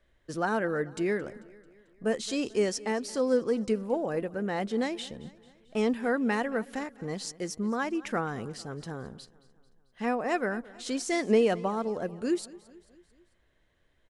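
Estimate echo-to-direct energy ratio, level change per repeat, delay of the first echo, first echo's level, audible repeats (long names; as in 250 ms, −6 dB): −19.0 dB, −5.0 dB, 221 ms, −20.5 dB, 3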